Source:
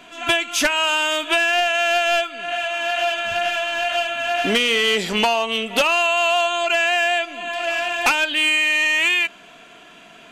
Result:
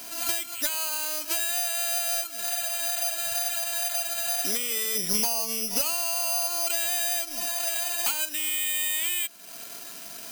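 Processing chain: compressor 3:1, threshold -35 dBFS, peak gain reduction 15 dB; 4.95–7.46 low shelf 210 Hz +11 dB; careless resampling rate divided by 8×, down filtered, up zero stuff; gain -3 dB

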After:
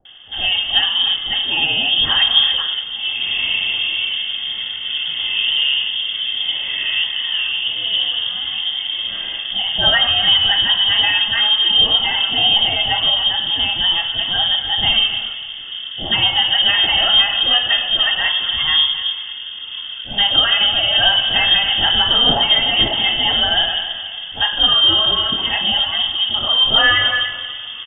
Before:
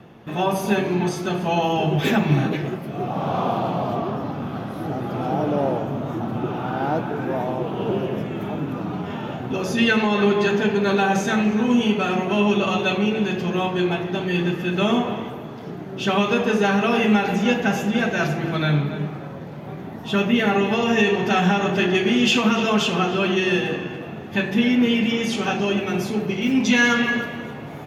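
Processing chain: Butterworth band-stop 1000 Hz, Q 1.9; inverted band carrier 3400 Hz; bands offset in time lows, highs 50 ms, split 600 Hz; gain +4.5 dB

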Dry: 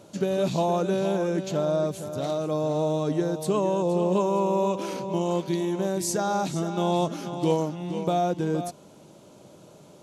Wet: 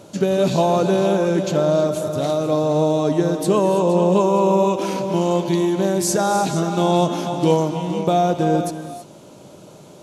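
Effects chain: non-linear reverb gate 0.35 s rising, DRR 8.5 dB; gain +7 dB

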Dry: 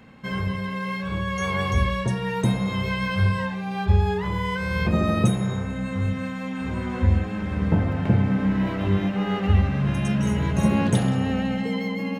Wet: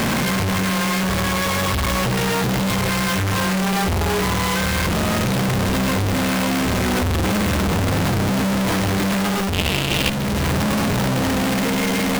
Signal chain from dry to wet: infinite clipping; 9.53–10.1 resonant high shelf 2100 Hz +10 dB, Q 3; vocal rider 0.5 s; running maximum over 5 samples; gain +3 dB

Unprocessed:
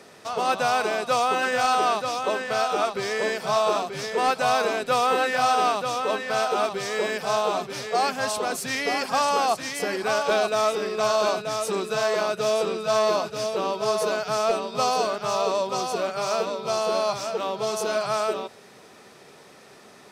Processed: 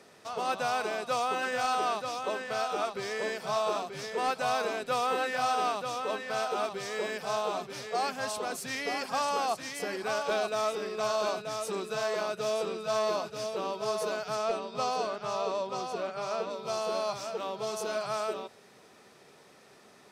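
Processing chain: 14.35–16.49 high shelf 11000 Hz -> 6000 Hz -12 dB; gain -7.5 dB

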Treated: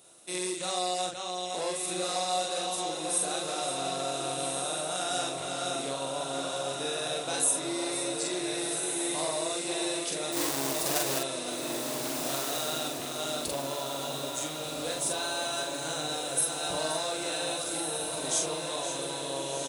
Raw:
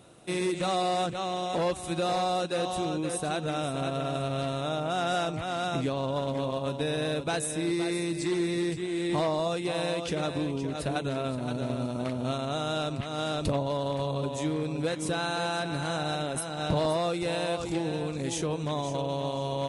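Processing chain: 10.32–11.19 half-waves squared off; tone controls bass -13 dB, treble +14 dB; doubler 44 ms -2 dB; diffused feedback echo 1.518 s, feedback 48%, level -3 dB; gain -7 dB

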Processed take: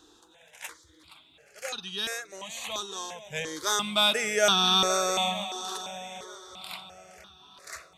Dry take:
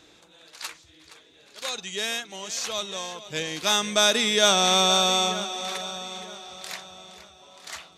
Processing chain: step phaser 2.9 Hz 590–2100 Hz

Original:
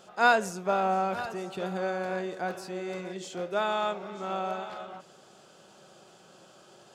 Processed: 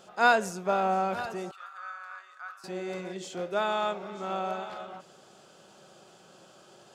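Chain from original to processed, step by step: 1.51–2.64 ladder high-pass 1200 Hz, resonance 85%

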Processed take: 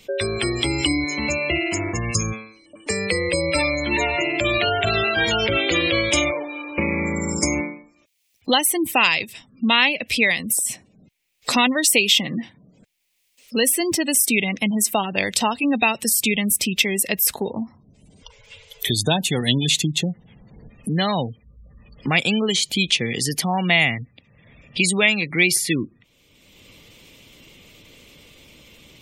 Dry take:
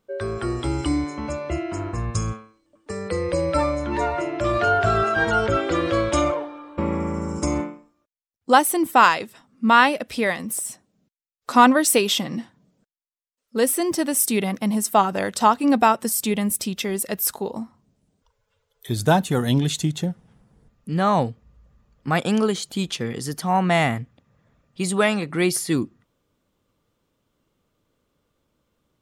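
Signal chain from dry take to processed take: spectral gate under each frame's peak -30 dB strong; resonant high shelf 1800 Hz +8.5 dB, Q 3; three-band squash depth 70%; gain -1 dB

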